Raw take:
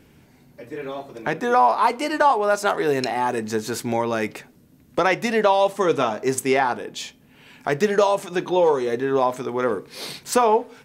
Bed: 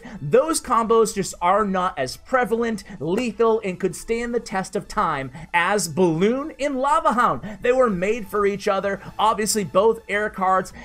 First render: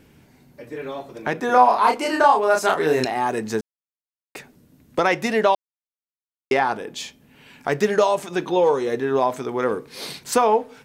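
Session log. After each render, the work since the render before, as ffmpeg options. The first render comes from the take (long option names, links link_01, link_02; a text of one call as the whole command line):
ffmpeg -i in.wav -filter_complex "[0:a]asettb=1/sr,asplit=3[link_01][link_02][link_03];[link_01]atrim=end=1.464[link_04];[link_02]atrim=start=1.46:end=3.05,asetpts=PTS-STARTPTS,afade=type=in:duration=0.004:curve=qsin,afade=type=out:start_time=1.586:duration=0.004:curve=qsin,asplit=2[link_05][link_06];[link_06]adelay=32,volume=-3dB[link_07];[link_05][link_07]amix=inputs=2:normalize=0,atrim=end_sample=70119[link_08];[link_03]atrim=start=3.046[link_09];[link_04][link_08]acrossfade=duration=0.004:curve1=hsin:curve2=qsin[link_10];[link_10][link_09]acrossfade=duration=0.004:curve1=qsin:curve2=hsin,asplit=5[link_11][link_12][link_13][link_14][link_15];[link_11]atrim=end=3.61,asetpts=PTS-STARTPTS,afade=type=out:start_time=3.606:duration=0.004:curve=hsin[link_16];[link_12]atrim=start=3.61:end=4.35,asetpts=PTS-STARTPTS,volume=0[link_17];[link_13]atrim=start=4.35:end=5.55,asetpts=PTS-STARTPTS,afade=type=in:duration=0.004:curve=hsin,afade=type=out:start_time=1.196:duration=0.004:curve=hsin[link_18];[link_14]atrim=start=5.55:end=6.51,asetpts=PTS-STARTPTS,volume=0[link_19];[link_15]atrim=start=6.51,asetpts=PTS-STARTPTS,afade=type=in:duration=0.004:curve=hsin[link_20];[link_16][link_17][link_18][link_19][link_20]concat=n=5:v=0:a=1" out.wav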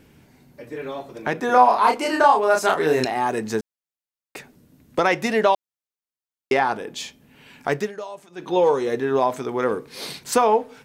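ffmpeg -i in.wav -filter_complex "[0:a]asplit=3[link_01][link_02][link_03];[link_01]atrim=end=7.92,asetpts=PTS-STARTPTS,afade=type=out:start_time=7.72:duration=0.2:silence=0.158489[link_04];[link_02]atrim=start=7.92:end=8.36,asetpts=PTS-STARTPTS,volume=-16dB[link_05];[link_03]atrim=start=8.36,asetpts=PTS-STARTPTS,afade=type=in:duration=0.2:silence=0.158489[link_06];[link_04][link_05][link_06]concat=n=3:v=0:a=1" out.wav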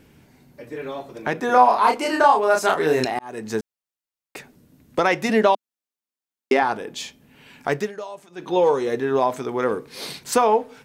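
ffmpeg -i in.wav -filter_complex "[0:a]asettb=1/sr,asplit=3[link_01][link_02][link_03];[link_01]atrim=end=5.294[link_04];[link_02]atrim=start=5.29:end=6.63,asetpts=PTS-STARTPTS,afade=type=in:duration=0.004:curve=qsin,afade=type=out:start_time=1.336:duration=0.004:curve=qsin,lowshelf=frequency=170:width_type=q:width=3:gain=-8.5[link_05];[link_03]atrim=start=6.626[link_06];[link_04][link_05]acrossfade=duration=0.004:curve1=hsin:curve2=qsin[link_07];[link_07][link_06]acrossfade=duration=0.004:curve1=qsin:curve2=hsin,asplit=2[link_08][link_09];[link_08]atrim=end=3.19,asetpts=PTS-STARTPTS,afade=type=out:start_time=3.186:duration=0.004:curve=hsin[link_10];[link_09]atrim=start=3.19,asetpts=PTS-STARTPTS,afade=type=in:duration=0.4[link_11];[link_10][link_11]concat=n=2:v=0:a=1" out.wav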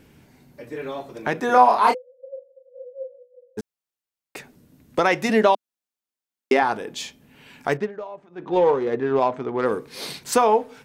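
ffmpeg -i in.wav -filter_complex "[0:a]asplit=3[link_01][link_02][link_03];[link_01]afade=type=out:start_time=1.93:duration=0.02[link_04];[link_02]asuperpass=centerf=520:order=20:qfactor=7.9,afade=type=in:start_time=1.93:duration=0.02,afade=type=out:start_time=3.57:duration=0.02[link_05];[link_03]afade=type=in:start_time=3.57:duration=0.02[link_06];[link_04][link_05][link_06]amix=inputs=3:normalize=0,asettb=1/sr,asplit=3[link_07][link_08][link_09];[link_07]atrim=end=7.774[link_10];[link_08]atrim=start=7.77:end=9.66,asetpts=PTS-STARTPTS,afade=type=in:duration=0.004:curve=qsin,afade=type=out:start_time=1.886:duration=0.004:curve=qsin,adynamicsmooth=sensitivity=1:basefreq=1700[link_11];[link_09]atrim=start=9.656[link_12];[link_10][link_11]acrossfade=duration=0.004:curve1=hsin:curve2=qsin[link_13];[link_13][link_12]acrossfade=duration=0.004:curve1=qsin:curve2=hsin" out.wav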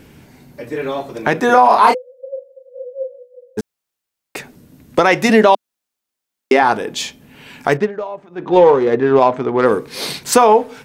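ffmpeg -i in.wav -af "alimiter=level_in=9dB:limit=-1dB:release=50:level=0:latency=1" out.wav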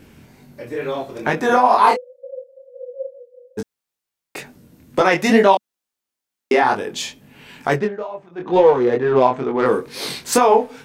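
ffmpeg -i in.wav -af "flanger=delay=20:depth=4.9:speed=2.2" out.wav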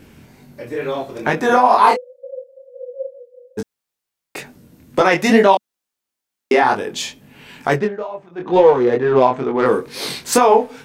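ffmpeg -i in.wav -af "volume=1.5dB,alimiter=limit=-1dB:level=0:latency=1" out.wav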